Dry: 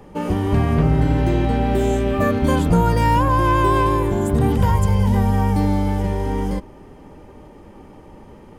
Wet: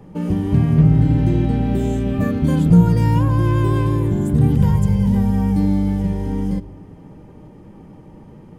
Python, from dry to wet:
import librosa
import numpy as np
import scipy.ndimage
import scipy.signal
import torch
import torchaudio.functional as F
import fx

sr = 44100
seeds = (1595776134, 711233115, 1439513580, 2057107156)

y = fx.peak_eq(x, sr, hz=150.0, db=11.5, octaves=1.9)
y = fx.room_shoebox(y, sr, seeds[0], volume_m3=3000.0, walls='furnished', distance_m=0.6)
y = fx.dynamic_eq(y, sr, hz=960.0, q=0.75, threshold_db=-29.0, ratio=4.0, max_db=-5)
y = y * 10.0 ** (-5.5 / 20.0)